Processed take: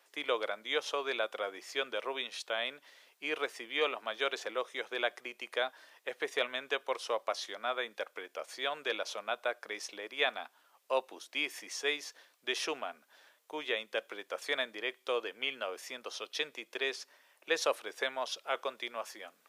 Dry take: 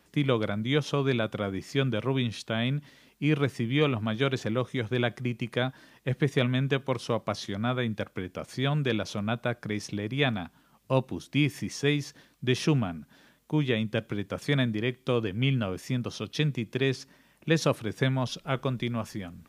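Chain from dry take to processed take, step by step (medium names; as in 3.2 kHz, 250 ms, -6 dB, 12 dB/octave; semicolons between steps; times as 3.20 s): high-pass 490 Hz 24 dB/octave; trim -2 dB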